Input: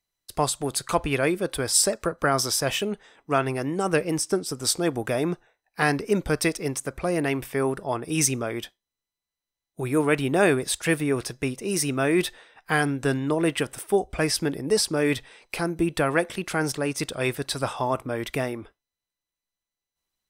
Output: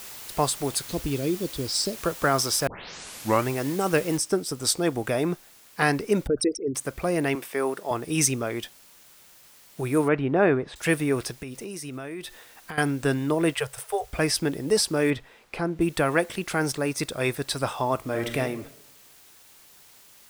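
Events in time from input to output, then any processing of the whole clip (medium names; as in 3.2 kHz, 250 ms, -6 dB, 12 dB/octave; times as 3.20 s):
0.85–1.96 s: FFT filter 340 Hz 0 dB, 1.4 kHz -27 dB, 4.4 kHz +2 dB, 13 kHz -20 dB
2.67 s: tape start 0.83 s
4.17 s: noise floor step -41 dB -53 dB
6.27–6.75 s: resonances exaggerated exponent 3
7.35–7.91 s: high-pass 310 Hz
10.08–10.76 s: low-pass 1.8 kHz
11.32–12.78 s: compression 12:1, threshold -32 dBFS
13.54–14.13 s: Chebyshev band-stop 140–430 Hz, order 4
15.10–15.81 s: low-pass 1.7 kHz 6 dB/octave
16.76–17.40 s: band-stop 3 kHz, Q 11
17.99–18.39 s: reverb throw, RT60 0.91 s, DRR 4.5 dB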